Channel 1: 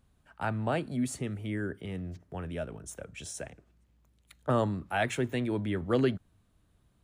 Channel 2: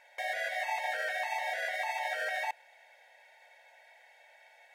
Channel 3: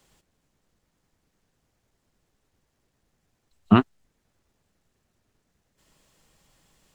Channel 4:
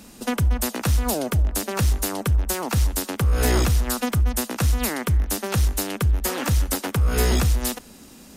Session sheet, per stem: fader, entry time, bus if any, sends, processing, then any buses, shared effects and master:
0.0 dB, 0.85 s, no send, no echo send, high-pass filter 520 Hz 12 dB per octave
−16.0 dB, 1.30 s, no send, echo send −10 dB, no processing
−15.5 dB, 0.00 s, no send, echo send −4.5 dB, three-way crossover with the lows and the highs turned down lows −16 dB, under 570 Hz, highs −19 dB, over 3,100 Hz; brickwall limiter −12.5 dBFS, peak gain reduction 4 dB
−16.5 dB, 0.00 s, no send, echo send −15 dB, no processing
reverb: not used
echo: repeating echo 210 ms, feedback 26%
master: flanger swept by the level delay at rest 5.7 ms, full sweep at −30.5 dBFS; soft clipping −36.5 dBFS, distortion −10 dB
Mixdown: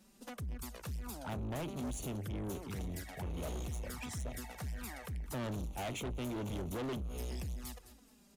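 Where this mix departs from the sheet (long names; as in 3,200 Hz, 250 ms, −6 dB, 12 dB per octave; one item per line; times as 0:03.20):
stem 1: missing high-pass filter 520 Hz 12 dB per octave
stem 2: entry 1.30 s → 2.55 s
stem 3 −15.5 dB → −26.0 dB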